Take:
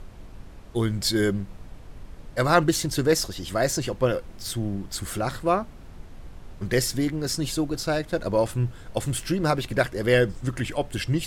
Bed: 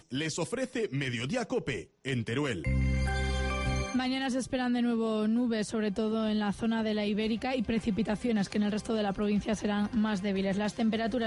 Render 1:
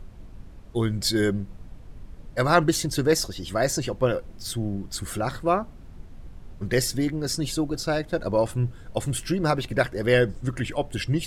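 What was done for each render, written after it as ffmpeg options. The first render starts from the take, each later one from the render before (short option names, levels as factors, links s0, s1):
-af "afftdn=nr=6:nf=-44"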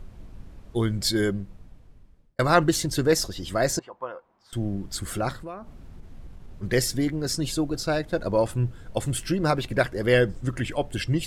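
-filter_complex "[0:a]asettb=1/sr,asplit=3[s0][s1][s2];[s0]atrim=end=3.794[s3];[s1]atrim=start=3.79:end=4.53,asetpts=PTS-STARTPTS,afade=t=in:d=0.004:c=qsin,afade=t=out:st=0.736:d=0.004:c=qsin,bandpass=f=980:t=q:w=3.2[s4];[s2]atrim=start=4.526[s5];[s3][s4]acrossfade=d=0.004:c1=hsin:c2=qsin[s6];[s6][s5]acrossfade=d=0.004:c1=qsin:c2=hsin,asplit=3[s7][s8][s9];[s7]afade=t=out:st=5.32:d=0.02[s10];[s8]acompressor=threshold=0.0158:ratio=4:attack=3.2:release=140:knee=1:detection=peak,afade=t=in:st=5.32:d=0.02,afade=t=out:st=6.62:d=0.02[s11];[s9]afade=t=in:st=6.62:d=0.02[s12];[s10][s11][s12]amix=inputs=3:normalize=0,asplit=2[s13][s14];[s13]atrim=end=2.39,asetpts=PTS-STARTPTS,afade=t=out:st=1.05:d=1.34[s15];[s14]atrim=start=2.39,asetpts=PTS-STARTPTS,afade=t=in:d=0.004:c=hsin[s16];[s15][s16]concat=n=2:v=0:a=1"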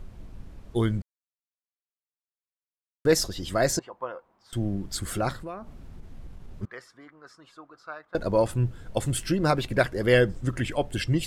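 -filter_complex "[0:a]asettb=1/sr,asplit=3[s0][s1][s2];[s0]atrim=end=6.654[s3];[s1]atrim=start=6.65:end=8.15,asetpts=PTS-STARTPTS,afade=t=in:d=0.004:c=qsin,afade=t=out:st=1.496:d=0.004:c=qsin,bandpass=f=1200:t=q:w=5.1[s4];[s2]atrim=start=8.146[s5];[s3][s4]acrossfade=d=0.004:c1=hsin:c2=qsin[s6];[s6][s5]acrossfade=d=0.004:c1=qsin:c2=hsin,asplit=3[s7][s8][s9];[s7]atrim=end=1.02,asetpts=PTS-STARTPTS,afade=t=out:st=1.016:d=0.004:c=hsin[s10];[s8]atrim=start=1.02:end=3.05,asetpts=PTS-STARTPTS,volume=0[s11];[s9]atrim=start=3.05,asetpts=PTS-STARTPTS,afade=t=in:d=0.004:c=hsin[s12];[s10][s11][s12]concat=n=3:v=0:a=1"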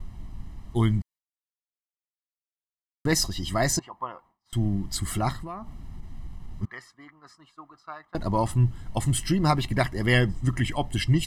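-af "agate=range=0.0224:threshold=0.00355:ratio=3:detection=peak,aecho=1:1:1:0.72"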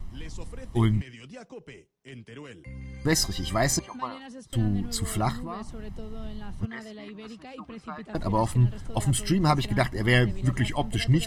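-filter_complex "[1:a]volume=0.251[s0];[0:a][s0]amix=inputs=2:normalize=0"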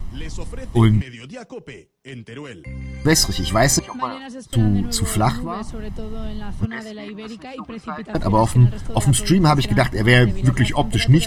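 -af "volume=2.66,alimiter=limit=0.794:level=0:latency=1"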